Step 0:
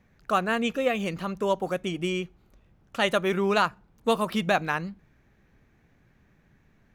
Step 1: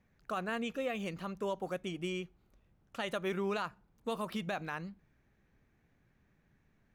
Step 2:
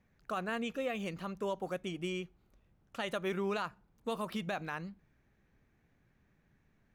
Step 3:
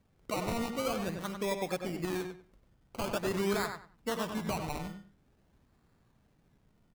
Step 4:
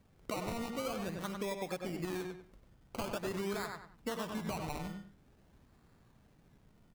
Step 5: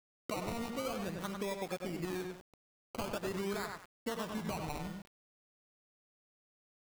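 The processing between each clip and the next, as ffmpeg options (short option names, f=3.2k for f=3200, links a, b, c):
-af "alimiter=limit=-17dB:level=0:latency=1:release=51,volume=-9dB"
-af anull
-filter_complex "[0:a]acrusher=samples=21:mix=1:aa=0.000001:lfo=1:lforange=12.6:lforate=0.47,asplit=2[a][b];[b]adelay=96,lowpass=f=3.8k:p=1,volume=-6dB,asplit=2[c][d];[d]adelay=96,lowpass=f=3.8k:p=1,volume=0.22,asplit=2[e][f];[f]adelay=96,lowpass=f=3.8k:p=1,volume=0.22[g];[c][e][g]amix=inputs=3:normalize=0[h];[a][h]amix=inputs=2:normalize=0,volume=2dB"
-af "acompressor=threshold=-41dB:ratio=3,volume=3.5dB"
-af "aeval=exprs='val(0)*gte(abs(val(0)),0.00376)':c=same"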